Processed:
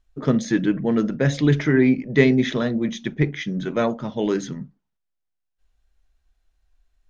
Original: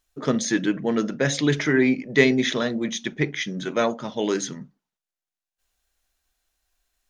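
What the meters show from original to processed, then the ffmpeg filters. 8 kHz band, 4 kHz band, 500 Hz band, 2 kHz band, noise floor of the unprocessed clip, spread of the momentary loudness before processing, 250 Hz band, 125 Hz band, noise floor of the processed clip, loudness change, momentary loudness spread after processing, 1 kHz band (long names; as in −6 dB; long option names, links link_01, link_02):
−8.5 dB, −5.0 dB, +1.0 dB, −2.5 dB, below −85 dBFS, 9 LU, +3.5 dB, +7.0 dB, −78 dBFS, +2.0 dB, 9 LU, −1.0 dB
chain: -af "aemphasis=mode=reproduction:type=bsi,volume=-1dB"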